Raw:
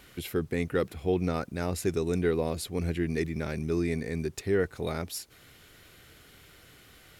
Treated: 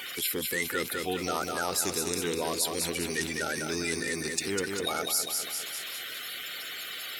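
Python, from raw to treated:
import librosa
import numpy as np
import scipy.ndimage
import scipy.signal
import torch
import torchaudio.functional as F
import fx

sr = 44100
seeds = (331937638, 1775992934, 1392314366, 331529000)

p1 = fx.spec_quant(x, sr, step_db=30)
p2 = fx.highpass(p1, sr, hz=930.0, slope=6)
p3 = fx.high_shelf(p2, sr, hz=2600.0, db=10.5)
p4 = p3 + fx.echo_feedback(p3, sr, ms=200, feedback_pct=45, wet_db=-7, dry=0)
y = fx.env_flatten(p4, sr, amount_pct=50)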